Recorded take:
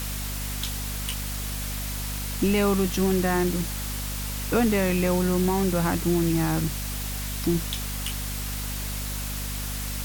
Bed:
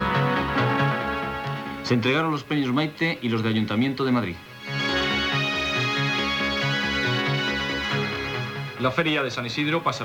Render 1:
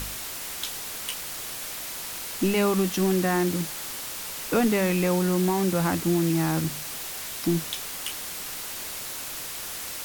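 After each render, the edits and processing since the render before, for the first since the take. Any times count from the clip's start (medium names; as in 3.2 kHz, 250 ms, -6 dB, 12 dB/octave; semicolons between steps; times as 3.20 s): de-hum 50 Hz, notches 5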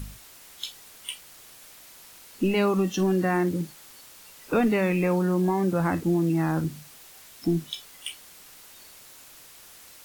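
noise print and reduce 14 dB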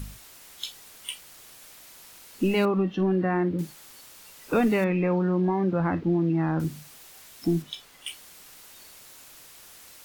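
2.65–3.59 s: distance through air 370 m; 4.84–6.60 s: distance through air 290 m; 7.62–8.07 s: treble shelf 5.3 kHz -8.5 dB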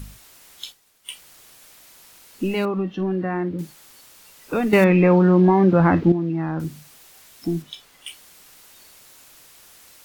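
0.65–1.14 s: expander -41 dBFS; 4.73–6.12 s: gain +9.5 dB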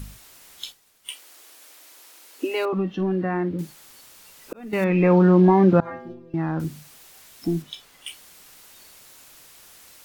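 1.10–2.73 s: steep high-pass 260 Hz 96 dB/octave; 4.53–5.21 s: fade in; 5.80–6.34 s: inharmonic resonator 120 Hz, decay 0.77 s, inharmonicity 0.008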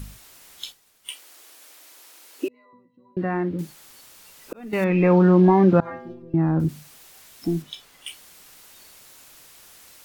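2.48–3.17 s: pitch-class resonator B, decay 0.59 s; 6.22–6.69 s: tilt shelf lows +6.5 dB, about 850 Hz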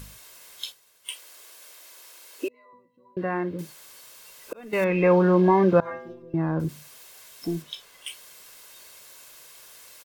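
bass shelf 150 Hz -11.5 dB; comb 1.9 ms, depth 39%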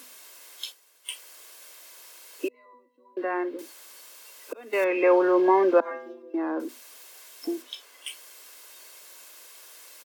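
steep high-pass 250 Hz 72 dB/octave; dynamic bell 3.8 kHz, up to -4 dB, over -60 dBFS, Q 7.4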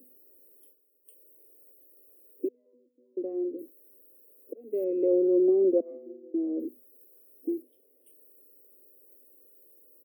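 inverse Chebyshev band-stop 870–7100 Hz, stop band 40 dB; peaking EQ 12 kHz -12.5 dB 0.81 oct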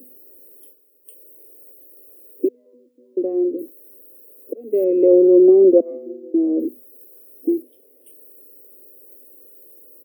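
trim +11.5 dB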